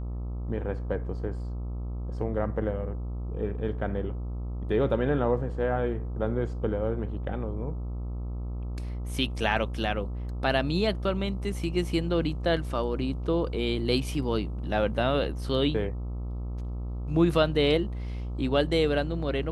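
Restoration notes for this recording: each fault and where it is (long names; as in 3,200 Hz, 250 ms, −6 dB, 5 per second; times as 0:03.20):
mains buzz 60 Hz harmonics 22 −33 dBFS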